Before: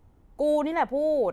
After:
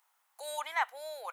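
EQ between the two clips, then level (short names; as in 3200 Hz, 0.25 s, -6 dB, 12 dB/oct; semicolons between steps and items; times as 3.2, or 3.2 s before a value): inverse Chebyshev high-pass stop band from 170 Hz, stop band 80 dB; high shelf 6300 Hz +10.5 dB; 0.0 dB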